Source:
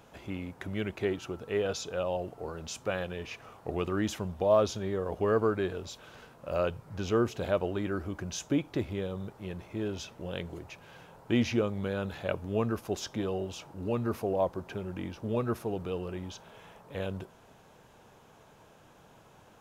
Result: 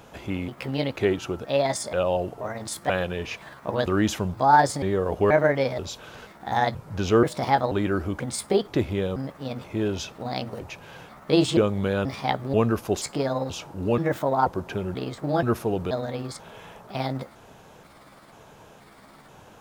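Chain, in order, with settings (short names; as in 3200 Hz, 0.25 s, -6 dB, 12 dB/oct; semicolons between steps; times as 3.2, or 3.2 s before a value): trilling pitch shifter +5.5 st, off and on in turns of 0.482 s; gain +8 dB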